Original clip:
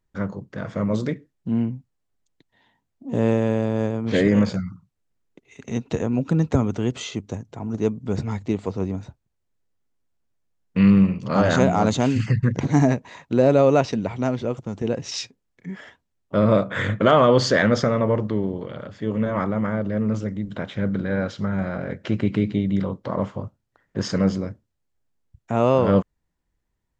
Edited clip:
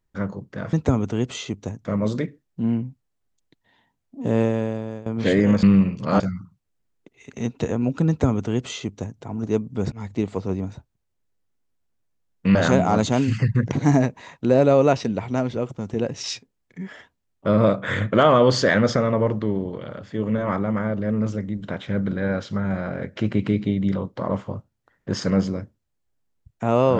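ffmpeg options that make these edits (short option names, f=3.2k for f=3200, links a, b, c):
-filter_complex "[0:a]asplit=8[a][b][c][d][e][f][g][h];[a]atrim=end=0.732[i];[b]atrim=start=6.388:end=7.512[j];[c]atrim=start=0.728:end=3.94,asetpts=PTS-STARTPTS,afade=t=out:st=2.552:d=0.66:silence=0.158489[k];[d]atrim=start=3.94:end=4.512,asetpts=PTS-STARTPTS,afade=t=in:d=0.004:c=hsin:silence=0.158489[l];[e]atrim=start=10.858:end=11.432[m];[f]atrim=start=4.508:end=8.23,asetpts=PTS-STARTPTS,afade=t=out:st=3.718:d=0.004:c=hsin:silence=0.0707946[n];[g]atrim=start=8.23:end=10.862,asetpts=PTS-STARTPTS,afade=t=in:d=0.3:c=qsin:silence=0.0707946[o];[h]atrim=start=11.428[p];[i][j]acrossfade=d=0.004:c1=hsin:c2=hsin[q];[k][l]concat=n=2:v=0:a=1[r];[q][r]acrossfade=d=0.004:c1=hsin:c2=hsin[s];[s][m]acrossfade=d=0.004:c1=hsin:c2=hsin[t];[n][o]concat=n=2:v=0:a=1[u];[t][u]acrossfade=d=0.004:c1=hsin:c2=hsin[v];[v][p]acrossfade=d=0.004:c1=hsin:c2=hsin"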